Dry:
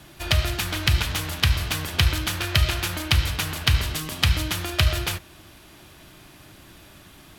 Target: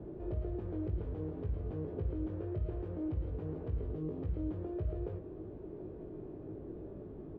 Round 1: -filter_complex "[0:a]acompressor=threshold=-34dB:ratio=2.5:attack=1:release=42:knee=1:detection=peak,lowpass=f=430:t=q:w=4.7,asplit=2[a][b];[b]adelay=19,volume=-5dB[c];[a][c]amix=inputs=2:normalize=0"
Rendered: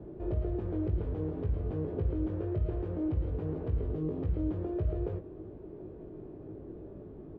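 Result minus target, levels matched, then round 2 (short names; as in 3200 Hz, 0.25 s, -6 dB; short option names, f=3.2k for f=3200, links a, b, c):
compressor: peak gain reduction -5 dB
-filter_complex "[0:a]acompressor=threshold=-42.5dB:ratio=2.5:attack=1:release=42:knee=1:detection=peak,lowpass=f=430:t=q:w=4.7,asplit=2[a][b];[b]adelay=19,volume=-5dB[c];[a][c]amix=inputs=2:normalize=0"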